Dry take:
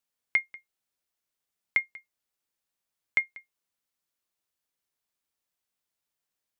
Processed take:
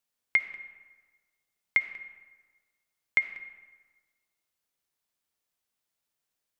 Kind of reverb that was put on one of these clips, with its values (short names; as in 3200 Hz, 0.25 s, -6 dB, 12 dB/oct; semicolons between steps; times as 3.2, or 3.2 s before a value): digital reverb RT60 1.4 s, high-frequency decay 0.65×, pre-delay 15 ms, DRR 10.5 dB; gain +1 dB